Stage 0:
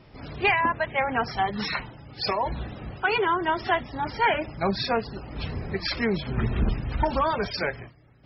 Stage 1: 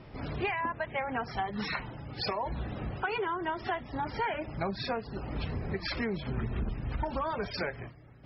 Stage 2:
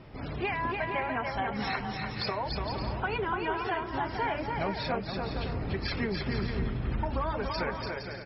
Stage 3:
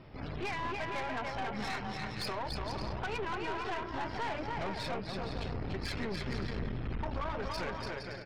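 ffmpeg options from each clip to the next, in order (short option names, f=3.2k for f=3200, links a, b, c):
-af "highshelf=f=5.1k:g=-12,acompressor=threshold=-34dB:ratio=4,volume=2.5dB"
-af "aecho=1:1:290|464|568.4|631|668.6:0.631|0.398|0.251|0.158|0.1"
-af "aeval=exprs='(tanh(39.8*val(0)+0.65)-tanh(0.65))/39.8':c=same"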